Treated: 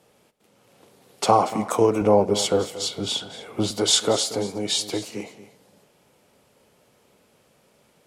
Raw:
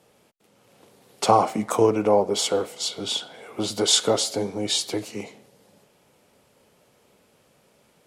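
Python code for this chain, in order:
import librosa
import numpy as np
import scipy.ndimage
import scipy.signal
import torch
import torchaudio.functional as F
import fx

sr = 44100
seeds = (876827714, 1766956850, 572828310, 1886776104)

y = fx.low_shelf(x, sr, hz=200.0, db=11.0, at=(2.01, 3.71))
y = y + 10.0 ** (-15.0 / 20.0) * np.pad(y, (int(233 * sr / 1000.0), 0))[:len(y)]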